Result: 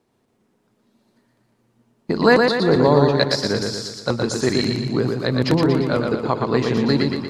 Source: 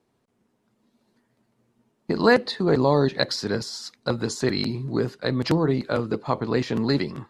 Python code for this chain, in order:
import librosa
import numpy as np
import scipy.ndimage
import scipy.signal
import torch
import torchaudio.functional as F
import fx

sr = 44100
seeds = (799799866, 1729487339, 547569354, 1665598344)

y = fx.echo_feedback(x, sr, ms=118, feedback_pct=52, wet_db=-4.0)
y = y * 10.0 ** (3.0 / 20.0)